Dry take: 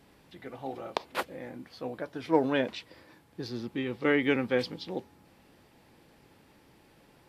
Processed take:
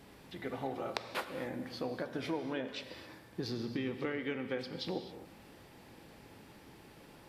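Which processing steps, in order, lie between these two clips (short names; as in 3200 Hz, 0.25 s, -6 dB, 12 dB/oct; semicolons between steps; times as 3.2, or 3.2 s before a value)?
compressor 16:1, threshold -37 dBFS, peak gain reduction 20 dB; non-linear reverb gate 0.29 s flat, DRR 8 dB; gain +3.5 dB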